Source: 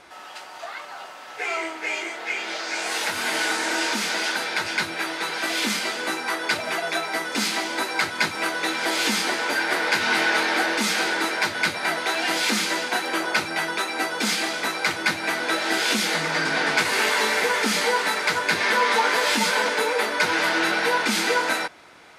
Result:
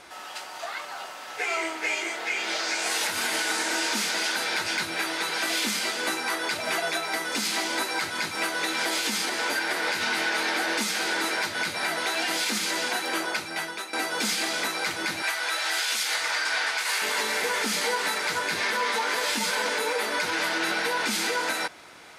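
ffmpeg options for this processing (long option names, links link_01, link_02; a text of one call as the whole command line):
ffmpeg -i in.wav -filter_complex "[0:a]asettb=1/sr,asplit=3[link_01][link_02][link_03];[link_01]atrim=end=3.684[link_04];[link_02]atrim=start=3.68:end=5.65,asetpts=PTS-STARTPTS,afade=type=in:duration=0.004:curve=qsin,afade=type=out:start_time=1.966:duration=0.004:curve=qsin,volume=14.5dB,asoftclip=hard,volume=-14.5dB[link_05];[link_03]atrim=start=5.646[link_06];[link_04][link_05]acrossfade=duration=0.004:curve1=hsin:curve2=qsin[link_07];[link_07][link_06]acrossfade=duration=0.004:curve1=qsin:curve2=hsin,asettb=1/sr,asplit=3[link_08][link_09][link_10];[link_08]atrim=end=15.224[link_11];[link_09]atrim=start=15.22:end=17.02,asetpts=PTS-STARTPTS,afade=type=in:duration=0.004:curve=qsin,afade=type=out:start_time=1.796:duration=0.004:curve=qsin,highpass=800[link_12];[link_10]atrim=start=17.016[link_13];[link_11][link_12]acrossfade=duration=0.004:curve1=hsin:curve2=qsin[link_14];[link_14][link_13]acrossfade=duration=0.004:curve1=qsin:curve2=hsin,asplit=2[link_15][link_16];[link_15]atrim=end=13.93,asetpts=PTS-STARTPTS,afade=type=out:start_time=12.95:duration=0.98:silence=0.199526[link_17];[link_16]atrim=start=13.93,asetpts=PTS-STARTPTS,afade=type=in:duration=0.004:curve=hsin:silence=0.199526[link_18];[link_17][link_18]concat=n=2:v=0:a=1,highshelf=frequency=4500:gain=6.5,alimiter=limit=-17dB:level=0:latency=1:release=184" out.wav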